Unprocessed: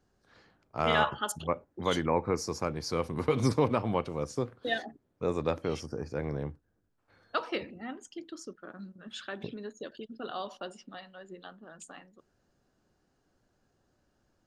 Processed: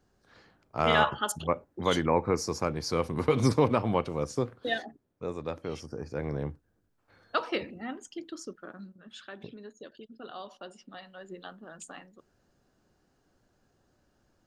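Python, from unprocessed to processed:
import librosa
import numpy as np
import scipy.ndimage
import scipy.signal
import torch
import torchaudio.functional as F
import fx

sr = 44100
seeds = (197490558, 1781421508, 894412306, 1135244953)

y = fx.gain(x, sr, db=fx.line((4.54, 2.5), (5.4, -6.0), (6.49, 2.5), (8.61, 2.5), (9.1, -5.0), (10.56, -5.0), (11.28, 3.0)))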